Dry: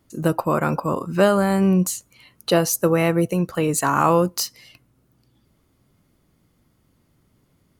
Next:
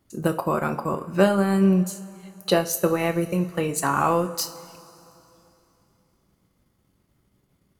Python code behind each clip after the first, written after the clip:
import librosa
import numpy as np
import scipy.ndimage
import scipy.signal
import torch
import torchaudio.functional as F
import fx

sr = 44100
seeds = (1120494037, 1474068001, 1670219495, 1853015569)

y = fx.transient(x, sr, attack_db=3, sustain_db=-8)
y = fx.rev_double_slope(y, sr, seeds[0], early_s=0.34, late_s=3.1, knee_db=-18, drr_db=6.0)
y = y * librosa.db_to_amplitude(-4.5)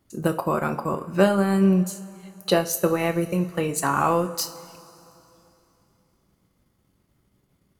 y = x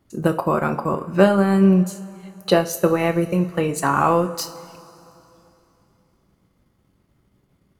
y = fx.high_shelf(x, sr, hz=4500.0, db=-7.5)
y = y * librosa.db_to_amplitude(4.0)